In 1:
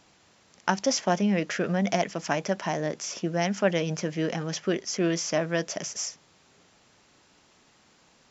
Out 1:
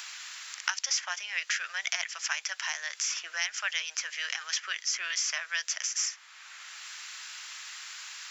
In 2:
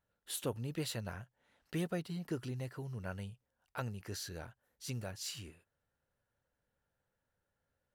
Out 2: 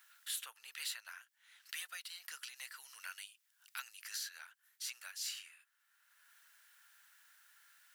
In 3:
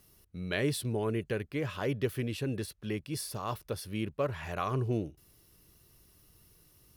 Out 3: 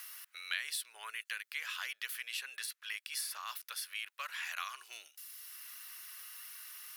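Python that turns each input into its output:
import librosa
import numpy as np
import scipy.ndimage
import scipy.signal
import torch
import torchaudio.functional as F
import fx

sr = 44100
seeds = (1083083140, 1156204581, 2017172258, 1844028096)

y = scipy.signal.sosfilt(scipy.signal.butter(4, 1400.0, 'highpass', fs=sr, output='sos'), x)
y = fx.high_shelf(y, sr, hz=8900.0, db=4.0)
y = fx.band_squash(y, sr, depth_pct=70)
y = y * librosa.db_to_amplitude(3.0)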